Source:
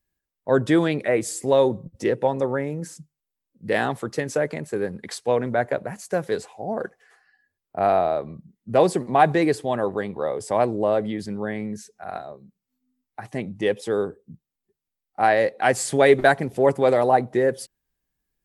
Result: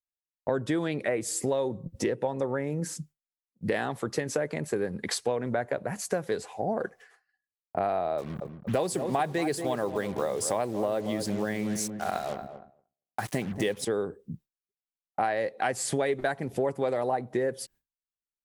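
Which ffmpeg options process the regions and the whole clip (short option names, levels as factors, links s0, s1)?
-filter_complex "[0:a]asettb=1/sr,asplit=3[s0][s1][s2];[s0]atrim=end=8.184[s3];[s1]atrim=start=8.18:end=13.85,asetpts=PTS-STARTPTS,afade=t=in:d=0.004:c=qsin,afade=t=out:st=5.666:d=0.004:c=qsin,highshelf=f=4500:g=11.5,acrusher=bits=6:mix=0:aa=0.5,asplit=2[s4][s5];[s5]adelay=232,lowpass=f=1100:p=1,volume=0.282,asplit=2[s6][s7];[s7]adelay=232,lowpass=f=1100:p=1,volume=0.36,asplit=2[s8][s9];[s9]adelay=232,lowpass=f=1100:p=1,volume=0.36,asplit=2[s10][s11];[s11]adelay=232,lowpass=f=1100:p=1,volume=0.36[s12];[s4][s6][s8][s10][s12]amix=inputs=5:normalize=0,atrim=end_sample=250047[s13];[s2]atrim=start=13.846[s14];[s3][s13]acrossfade=d=0.004:c1=hsin:c2=qsin[s15];[s15][s14]acrossfade=d=0.004:c1=qsin:c2=hsin,agate=range=0.0224:threshold=0.00398:ratio=3:detection=peak,acompressor=threshold=0.0282:ratio=6,volume=1.78"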